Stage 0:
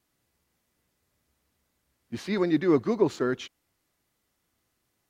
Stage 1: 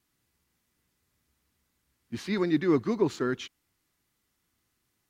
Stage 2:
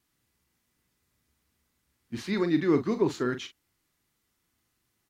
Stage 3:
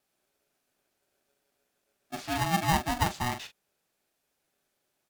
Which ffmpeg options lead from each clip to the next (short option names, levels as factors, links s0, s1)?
-af "equalizer=f=600:t=o:w=0.94:g=-7"
-filter_complex "[0:a]asplit=2[s0][s1];[s1]adelay=41,volume=0.316[s2];[s0][s2]amix=inputs=2:normalize=0"
-af "aeval=exprs='val(0)*sgn(sin(2*PI*490*n/s))':c=same,volume=0.75"